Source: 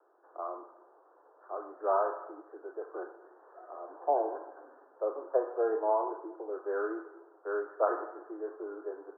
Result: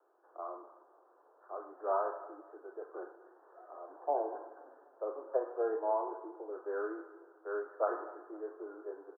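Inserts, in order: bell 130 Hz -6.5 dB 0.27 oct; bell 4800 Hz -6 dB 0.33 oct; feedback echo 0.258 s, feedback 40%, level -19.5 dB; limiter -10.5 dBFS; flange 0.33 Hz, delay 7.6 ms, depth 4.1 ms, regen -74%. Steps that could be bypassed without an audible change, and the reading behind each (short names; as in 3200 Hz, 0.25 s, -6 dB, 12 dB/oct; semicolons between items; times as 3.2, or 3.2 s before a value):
bell 130 Hz: input band starts at 270 Hz; bell 4800 Hz: input band ends at 1700 Hz; limiter -10.5 dBFS: input peak -14.5 dBFS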